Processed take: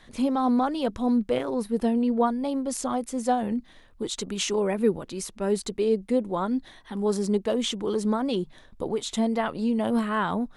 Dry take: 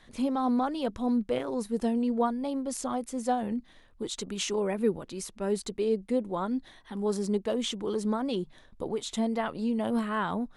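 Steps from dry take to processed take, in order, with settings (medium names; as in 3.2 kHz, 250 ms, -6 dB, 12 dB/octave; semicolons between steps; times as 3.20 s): 1.50–2.27 s: peaking EQ 6.9 kHz -8.5 dB 0.73 oct; trim +4 dB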